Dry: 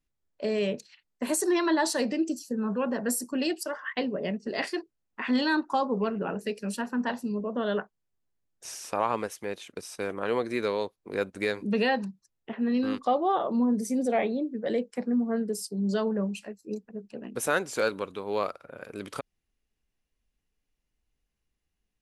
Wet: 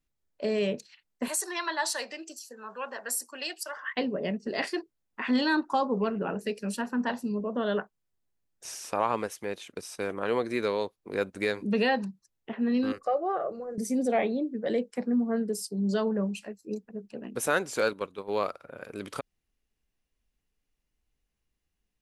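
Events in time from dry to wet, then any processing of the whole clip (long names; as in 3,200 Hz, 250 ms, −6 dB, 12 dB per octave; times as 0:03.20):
0:01.28–0:03.77: high-pass filter 870 Hz
0:12.92–0:13.78: phaser with its sweep stopped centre 940 Hz, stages 6
0:17.93–0:18.42: noise gate −36 dBFS, range −9 dB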